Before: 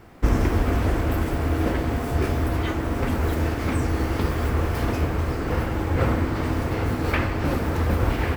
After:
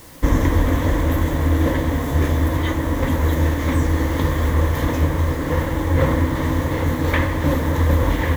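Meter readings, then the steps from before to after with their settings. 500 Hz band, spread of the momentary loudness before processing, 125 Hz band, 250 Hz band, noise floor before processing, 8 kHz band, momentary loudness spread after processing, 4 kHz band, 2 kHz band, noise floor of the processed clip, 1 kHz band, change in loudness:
+3.5 dB, 3 LU, +5.0 dB, +4.5 dB, −28 dBFS, +5.5 dB, 3 LU, +4.0 dB, +4.0 dB, −24 dBFS, +3.0 dB, +4.5 dB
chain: EQ curve with evenly spaced ripples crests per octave 1.1, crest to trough 10 dB
in parallel at −10 dB: bit-depth reduction 6 bits, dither triangular

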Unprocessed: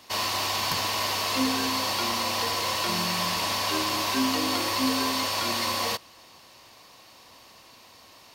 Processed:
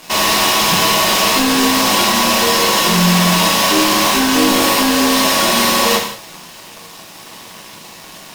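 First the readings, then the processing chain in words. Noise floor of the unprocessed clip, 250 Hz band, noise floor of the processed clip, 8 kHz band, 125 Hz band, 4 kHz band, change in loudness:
−52 dBFS, +14.5 dB, −37 dBFS, +15.5 dB, +17.0 dB, +12.5 dB, +13.5 dB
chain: low shelf with overshoot 100 Hz −13.5 dB, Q 3
notch filter 4,500 Hz, Q 12
leveller curve on the samples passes 5
reverb whose tail is shaped and stops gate 240 ms falling, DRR −1.5 dB
level −1 dB

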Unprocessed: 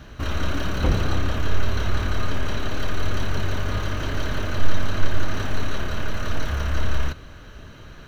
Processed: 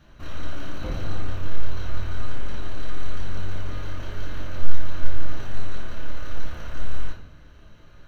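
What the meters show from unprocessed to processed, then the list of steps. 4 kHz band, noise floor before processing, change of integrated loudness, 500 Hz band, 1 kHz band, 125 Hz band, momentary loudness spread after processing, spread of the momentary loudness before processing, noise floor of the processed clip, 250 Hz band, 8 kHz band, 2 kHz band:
−10.0 dB, −42 dBFS, −9.0 dB, −9.0 dB, −9.5 dB, −7.0 dB, 6 LU, 5 LU, −48 dBFS, −9.0 dB, can't be measured, −10.0 dB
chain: rectangular room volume 120 cubic metres, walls mixed, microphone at 0.87 metres
level −13 dB

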